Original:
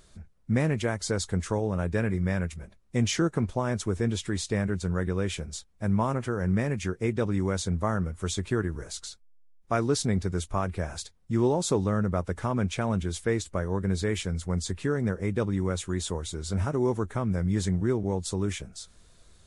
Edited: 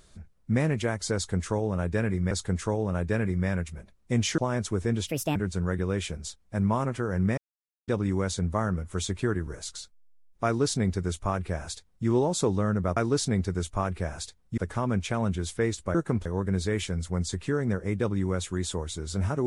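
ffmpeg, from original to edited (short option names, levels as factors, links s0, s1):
-filter_complex "[0:a]asplit=11[s0][s1][s2][s3][s4][s5][s6][s7][s8][s9][s10];[s0]atrim=end=2.312[s11];[s1]atrim=start=1.148:end=3.222[s12];[s2]atrim=start=3.528:end=4.224[s13];[s3]atrim=start=4.22:end=4.64,asetpts=PTS-STARTPTS,asetrate=64827,aresample=44100[s14];[s4]atrim=start=4.636:end=6.66,asetpts=PTS-STARTPTS,afade=t=out:st=2.02:d=0.004:c=hsin[s15];[s5]atrim=start=6.66:end=7.16,asetpts=PTS-STARTPTS,volume=0[s16];[s6]atrim=start=7.16:end=12.252,asetpts=PTS-STARTPTS,afade=t=in:d=0.004:c=hsin[s17];[s7]atrim=start=9.738:end=11.352[s18];[s8]atrim=start=12.248:end=13.622[s19];[s9]atrim=start=3.218:end=3.532[s20];[s10]atrim=start=13.618[s21];[s11][s12]acrossfade=d=0.004:c1=hsin:c2=hsin[s22];[s22][s13]acrossfade=d=0.004:c1=hsin:c2=hsin[s23];[s23][s14]acrossfade=d=0.004:c1=hsin:c2=hsin[s24];[s15][s16][s17]concat=n=3:v=0:a=1[s25];[s24][s25]acrossfade=d=0.004:c1=hsin:c2=hsin[s26];[s26][s18]acrossfade=d=0.004:c1=hsin:c2=hsin[s27];[s27][s19]acrossfade=d=0.004:c1=hsin:c2=hsin[s28];[s28][s20]acrossfade=d=0.004:c1=hsin:c2=hsin[s29];[s29][s21]acrossfade=d=0.004:c1=hsin:c2=hsin"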